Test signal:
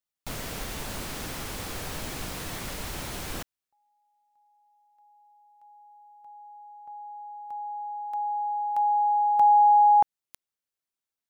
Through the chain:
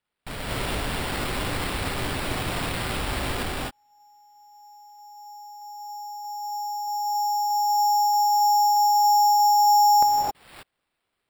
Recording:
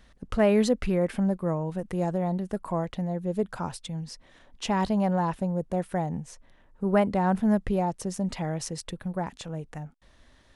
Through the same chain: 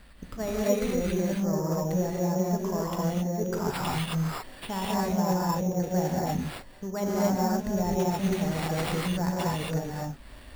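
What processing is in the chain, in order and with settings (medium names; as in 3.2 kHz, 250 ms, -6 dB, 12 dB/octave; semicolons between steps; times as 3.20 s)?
reverse; compression 5:1, threshold -35 dBFS; reverse; gated-style reverb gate 290 ms rising, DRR -5.5 dB; sample-and-hold 7×; trim +4 dB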